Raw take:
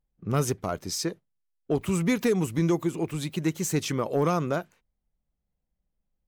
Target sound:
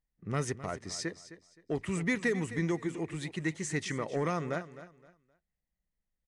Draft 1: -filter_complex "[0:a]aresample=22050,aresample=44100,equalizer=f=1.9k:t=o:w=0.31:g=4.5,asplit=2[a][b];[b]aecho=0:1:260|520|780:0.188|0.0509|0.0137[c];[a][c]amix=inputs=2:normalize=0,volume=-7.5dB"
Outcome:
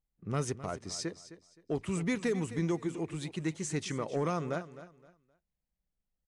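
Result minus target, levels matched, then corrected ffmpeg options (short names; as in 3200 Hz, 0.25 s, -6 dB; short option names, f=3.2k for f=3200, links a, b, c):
2000 Hz band -5.5 dB
-filter_complex "[0:a]aresample=22050,aresample=44100,equalizer=f=1.9k:t=o:w=0.31:g=14.5,asplit=2[a][b];[b]aecho=0:1:260|520|780:0.188|0.0509|0.0137[c];[a][c]amix=inputs=2:normalize=0,volume=-7.5dB"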